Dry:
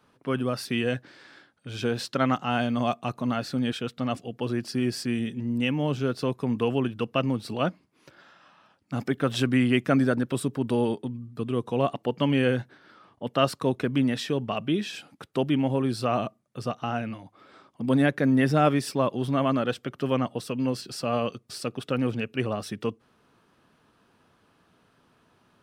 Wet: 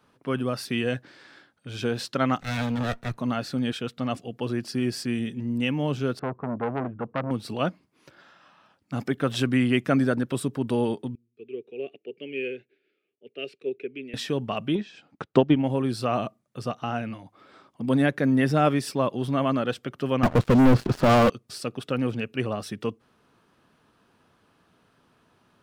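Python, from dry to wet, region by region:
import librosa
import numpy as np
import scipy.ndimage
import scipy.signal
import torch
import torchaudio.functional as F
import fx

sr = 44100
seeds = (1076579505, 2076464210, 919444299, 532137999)

y = fx.chain(x, sr, fx.lower_of_two(delay_ms=0.5),
    fx.peak_eq(hz=100.0, db=4.0, octaves=0.88),
    fx.band_widen(depth_pct=40), at=(2.4, 3.18))
y = fx.chain(y, sr, fx.lowpass(hz=1500.0, slope=24),
    fx.transformer_sat(knee_hz=1100.0), at=(6.19, 7.31))
y = fx.chain(y, sr, fx.double_bandpass(hz=1000.0, octaves=2.6),
    fx.band_widen(depth_pct=40), at=(11.15, 14.14))
y = fx.chain(y, sr, fx.lowpass(hz=7400.0, slope=24),
    fx.high_shelf(hz=2800.0, db=-8.5),
    fx.transient(attack_db=10, sustain_db=-7), at=(14.75, 15.64))
y = fx.chain(y, sr, fx.lowpass(hz=1500.0, slope=12),
    fx.leveller(passes=5),
    fx.low_shelf(hz=100.0, db=11.0), at=(20.23, 21.3))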